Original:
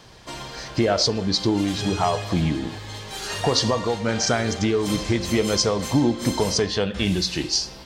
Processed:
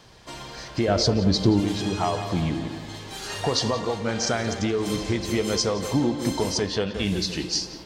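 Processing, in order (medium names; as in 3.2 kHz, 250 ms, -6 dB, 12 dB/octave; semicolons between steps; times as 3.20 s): 0.88–1.60 s: bass shelf 290 Hz +11 dB; on a send: tape echo 175 ms, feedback 62%, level -9 dB, low-pass 2 kHz; on the sum: trim -3.5 dB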